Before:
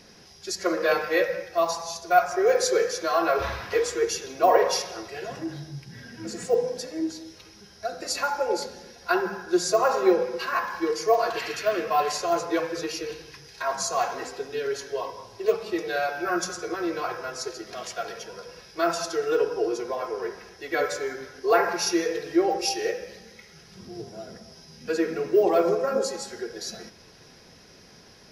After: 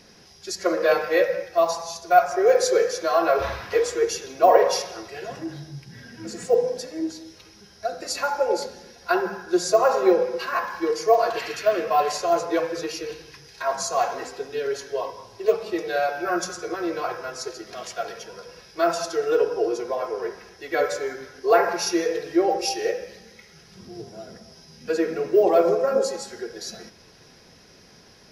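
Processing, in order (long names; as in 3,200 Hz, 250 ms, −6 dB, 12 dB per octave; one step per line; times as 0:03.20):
dynamic equaliser 590 Hz, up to +5 dB, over −35 dBFS, Q 1.7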